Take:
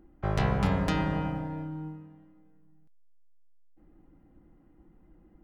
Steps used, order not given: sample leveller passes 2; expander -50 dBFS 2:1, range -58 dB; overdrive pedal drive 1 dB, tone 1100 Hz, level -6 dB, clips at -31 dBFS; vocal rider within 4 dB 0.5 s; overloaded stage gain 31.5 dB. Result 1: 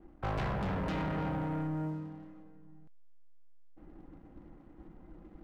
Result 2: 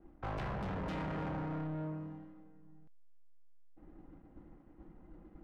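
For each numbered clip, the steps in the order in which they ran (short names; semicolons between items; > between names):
overdrive pedal > overloaded stage > vocal rider > sample leveller > expander; expander > vocal rider > overloaded stage > sample leveller > overdrive pedal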